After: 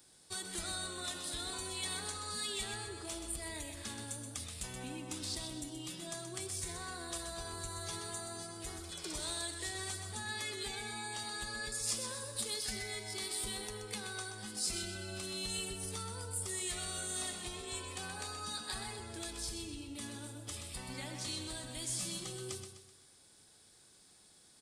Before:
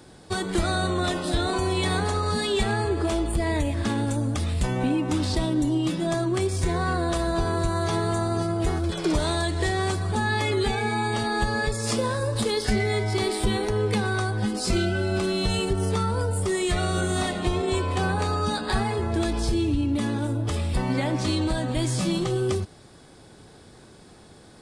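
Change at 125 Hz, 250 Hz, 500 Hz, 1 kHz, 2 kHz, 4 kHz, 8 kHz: -22.5 dB, -22.0 dB, -21.0 dB, -18.5 dB, -14.0 dB, -8.5 dB, -2.5 dB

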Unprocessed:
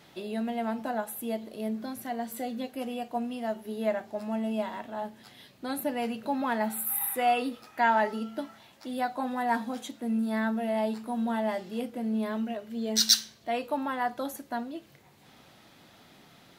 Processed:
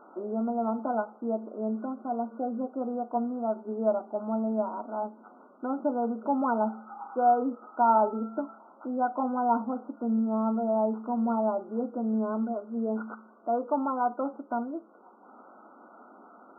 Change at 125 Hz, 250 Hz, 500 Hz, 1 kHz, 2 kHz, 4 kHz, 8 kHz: no reading, +2.0 dB, +3.0 dB, +3.0 dB, -10.0 dB, under -40 dB, under -40 dB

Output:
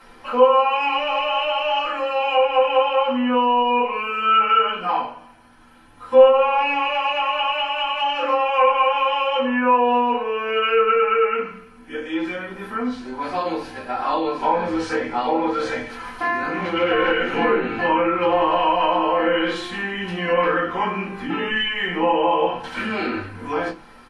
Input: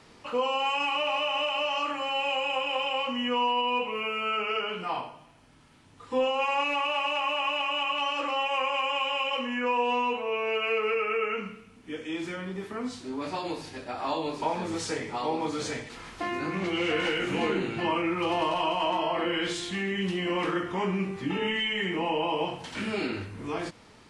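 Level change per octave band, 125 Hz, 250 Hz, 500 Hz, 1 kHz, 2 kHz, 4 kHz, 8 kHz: +1.5 dB, +6.5 dB, +10.5 dB, +10.0 dB, +6.5 dB, +3.5 dB, no reading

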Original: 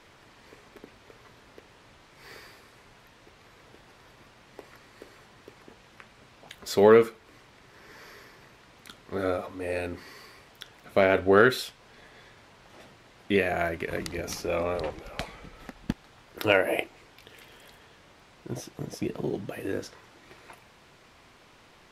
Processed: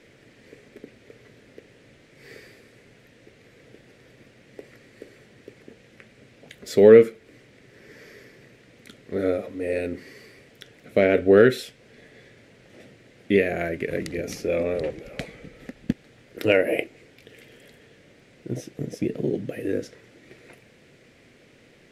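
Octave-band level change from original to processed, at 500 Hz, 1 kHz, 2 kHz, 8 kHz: +5.0 dB, -6.0 dB, 0.0 dB, no reading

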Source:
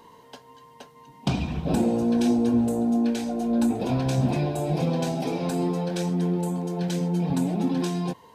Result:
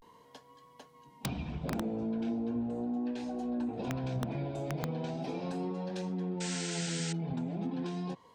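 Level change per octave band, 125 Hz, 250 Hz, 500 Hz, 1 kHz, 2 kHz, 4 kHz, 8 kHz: -10.5 dB, -11.5 dB, -10.5 dB, -10.5 dB, -5.5 dB, -5.5 dB, -3.0 dB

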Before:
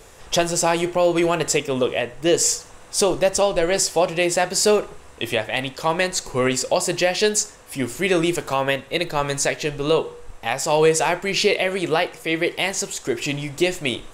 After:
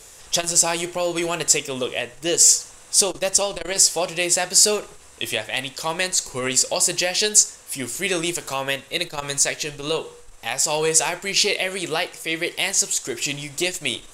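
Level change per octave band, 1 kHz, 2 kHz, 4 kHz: -5.0 dB, -1.5 dB, +3.0 dB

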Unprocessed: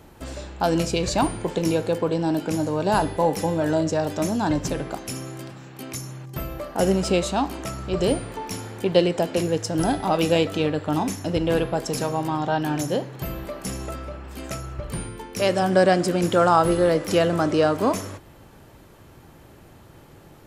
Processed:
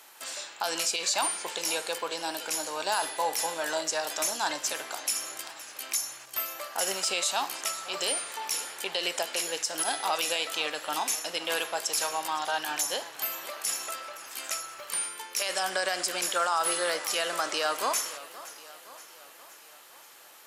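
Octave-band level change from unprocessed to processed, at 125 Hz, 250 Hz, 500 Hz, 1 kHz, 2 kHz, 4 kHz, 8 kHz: -32.5 dB, -22.0 dB, -12.5 dB, -6.0 dB, 0.0 dB, +2.5 dB, +6.0 dB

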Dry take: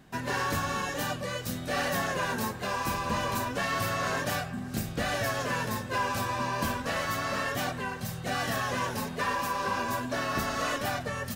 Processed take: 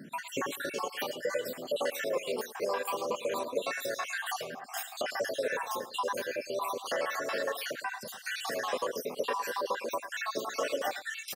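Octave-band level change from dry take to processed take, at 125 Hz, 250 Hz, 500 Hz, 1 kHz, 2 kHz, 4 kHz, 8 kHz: -22.5 dB, -10.0 dB, +1.5 dB, -5.0 dB, -4.5 dB, -3.0 dB, -3.5 dB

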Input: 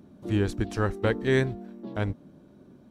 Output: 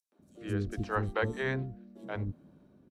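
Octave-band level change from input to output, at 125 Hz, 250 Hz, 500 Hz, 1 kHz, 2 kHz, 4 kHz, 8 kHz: -6.5 dB, -8.5 dB, -8.0 dB, -1.5 dB, -3.5 dB, -8.5 dB, under -10 dB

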